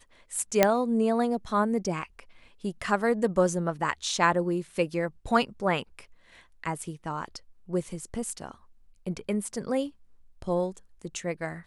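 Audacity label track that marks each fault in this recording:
0.630000	0.630000	click −4 dBFS

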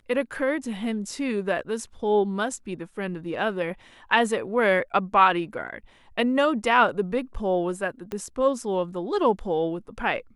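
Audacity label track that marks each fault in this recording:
8.120000	8.120000	click −18 dBFS

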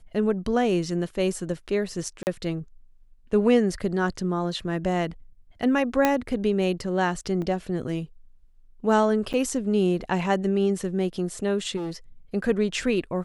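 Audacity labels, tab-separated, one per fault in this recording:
2.230000	2.270000	drop-out 39 ms
6.050000	6.050000	click −6 dBFS
7.420000	7.420000	drop-out 2.1 ms
9.330000	9.340000	drop-out 7.8 ms
11.760000	11.920000	clipping −28 dBFS

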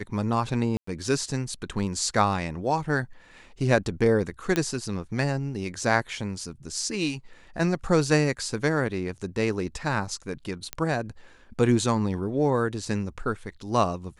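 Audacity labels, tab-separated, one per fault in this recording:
0.770000	0.870000	drop-out 104 ms
4.560000	4.560000	click −10 dBFS
10.730000	10.730000	click −12 dBFS

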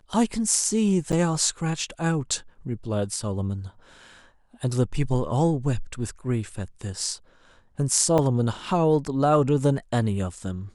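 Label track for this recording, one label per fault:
1.120000	1.130000	drop-out 8 ms
8.180000	8.190000	drop-out 5.2 ms

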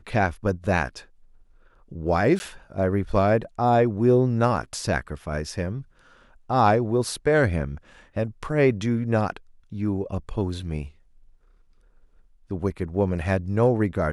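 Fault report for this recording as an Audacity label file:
2.390000	2.400000	drop-out 10 ms

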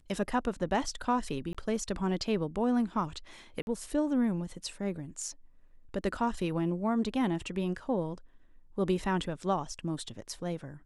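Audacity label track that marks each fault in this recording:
1.530000	1.550000	drop-out 16 ms
3.620000	3.670000	drop-out 51 ms

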